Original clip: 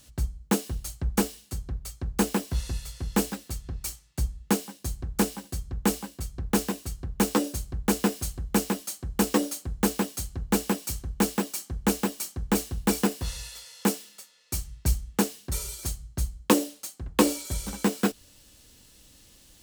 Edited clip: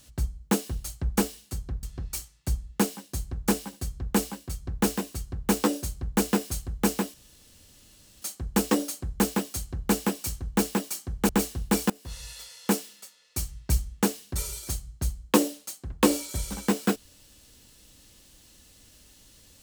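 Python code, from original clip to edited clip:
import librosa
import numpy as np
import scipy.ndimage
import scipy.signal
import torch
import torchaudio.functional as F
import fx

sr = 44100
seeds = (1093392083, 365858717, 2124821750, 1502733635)

y = fx.edit(x, sr, fx.cut(start_s=1.83, length_s=1.71),
    fx.insert_room_tone(at_s=8.85, length_s=1.08),
    fx.cut(start_s=11.92, length_s=0.53),
    fx.fade_in_from(start_s=13.06, length_s=0.5, floor_db=-23.5), tone=tone)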